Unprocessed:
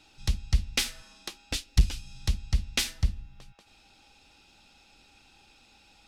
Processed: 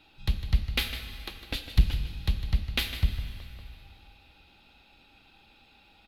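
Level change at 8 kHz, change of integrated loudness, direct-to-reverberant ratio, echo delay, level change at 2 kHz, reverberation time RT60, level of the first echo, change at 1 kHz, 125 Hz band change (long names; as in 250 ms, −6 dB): −12.0 dB, 0.0 dB, 6.5 dB, 154 ms, +1.0 dB, 2.7 s, −12.0 dB, +1.0 dB, +1.0 dB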